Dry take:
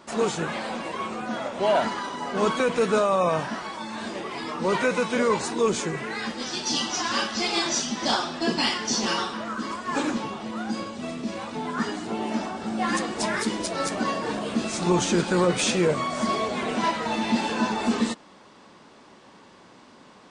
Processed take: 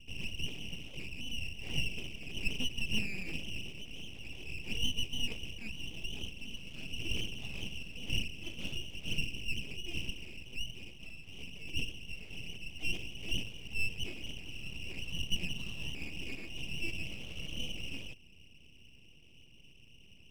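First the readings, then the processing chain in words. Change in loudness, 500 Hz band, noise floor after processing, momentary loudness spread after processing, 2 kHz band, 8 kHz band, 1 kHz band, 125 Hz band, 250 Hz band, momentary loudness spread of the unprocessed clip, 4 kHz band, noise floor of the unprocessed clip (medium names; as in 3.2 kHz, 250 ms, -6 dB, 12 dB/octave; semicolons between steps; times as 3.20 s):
-13.5 dB, -28.5 dB, -56 dBFS, 12 LU, -10.0 dB, -17.5 dB, -36.5 dB, -9.0 dB, -20.0 dB, 9 LU, -7.5 dB, -51 dBFS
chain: Butterworth band-pass 1.4 kHz, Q 7; full-wave rectifier; in parallel at -2 dB: compression, threshold -54 dBFS, peak gain reduction 22 dB; on the sum: trim +5 dB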